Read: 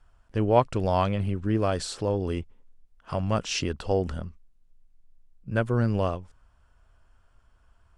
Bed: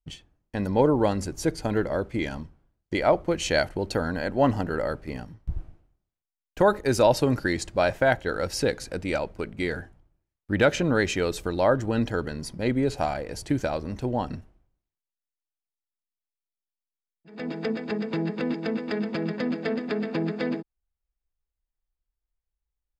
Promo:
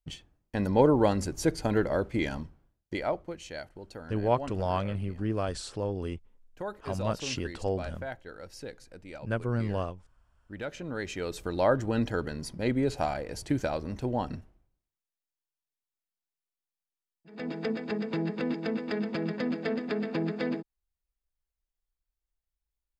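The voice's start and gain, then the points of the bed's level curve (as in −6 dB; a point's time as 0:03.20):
3.75 s, −5.5 dB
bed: 0:02.66 −1 dB
0:03.48 −17 dB
0:10.65 −17 dB
0:11.61 −3 dB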